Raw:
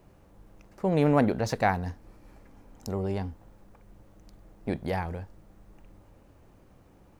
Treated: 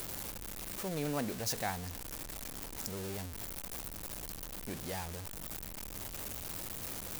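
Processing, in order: jump at every zero crossing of -26.5 dBFS; pre-emphasis filter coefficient 0.8; trim -1.5 dB

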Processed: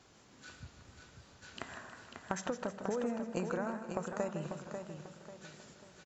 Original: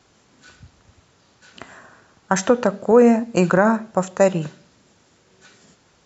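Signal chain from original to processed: compression 10:1, threshold -29 dBFS, peak gain reduction 20.5 dB; on a send: feedback delay 543 ms, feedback 35%, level -7 dB; on the sum: modulated delay 157 ms, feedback 56%, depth 101 cents, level -10.5 dB; trim -5 dB

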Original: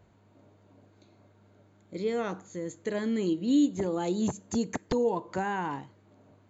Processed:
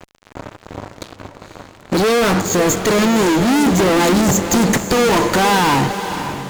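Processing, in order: fuzz box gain 51 dB, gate -55 dBFS; echo that smears into a reverb 511 ms, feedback 43%, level -9.5 dB

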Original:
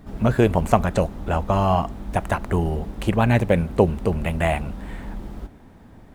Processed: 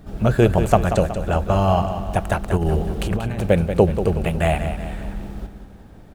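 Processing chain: graphic EQ with 31 bands 250 Hz -6 dB, 1 kHz -7 dB, 2 kHz -5 dB; 2.57–3.47 s: compressor with a negative ratio -23 dBFS, ratio -0.5; on a send: feedback delay 185 ms, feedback 48%, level -9.5 dB; on the sum: trim +2.5 dB

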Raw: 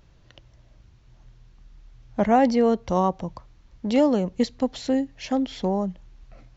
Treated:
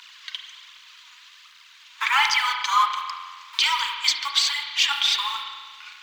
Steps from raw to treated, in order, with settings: companding laws mixed up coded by mu; steep high-pass 870 Hz 96 dB/octave; peaking EQ 3 kHz +13 dB 1.7 oct; phaser 1.2 Hz, delay 4.6 ms, feedback 60%; spring tank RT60 1.7 s, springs 36 ms, chirp 45 ms, DRR 3.5 dB; speed mistake 44.1 kHz file played as 48 kHz; trim +4 dB

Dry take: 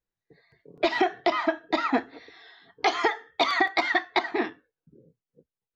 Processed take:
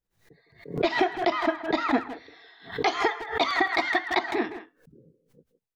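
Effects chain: bass shelf 280 Hz +5.5 dB; speakerphone echo 160 ms, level -10 dB; swell ahead of each attack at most 130 dB/s; trim -2 dB

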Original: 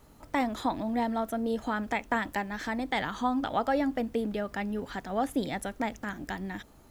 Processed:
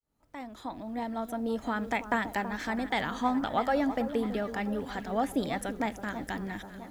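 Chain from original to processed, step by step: fade-in on the opening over 1.94 s; echo whose repeats swap between lows and highs 327 ms, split 1.3 kHz, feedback 70%, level -11 dB

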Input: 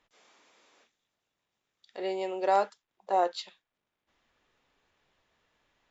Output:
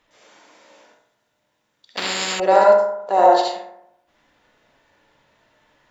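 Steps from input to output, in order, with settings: reverberation RT60 0.80 s, pre-delay 61 ms, DRR -4.5 dB; 1.97–2.40 s: spectrum-flattening compressor 10:1; trim +7.5 dB

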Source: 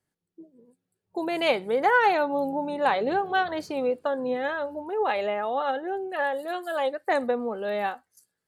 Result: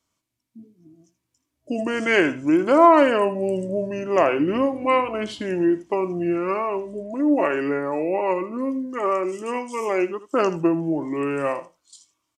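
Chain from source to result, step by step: treble shelf 2 kHz +9.5 dB; small resonant body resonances 440/960/1400/3300 Hz, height 8 dB, ringing for 25 ms; wide varispeed 0.685×; on a send: delay 79 ms -15 dB

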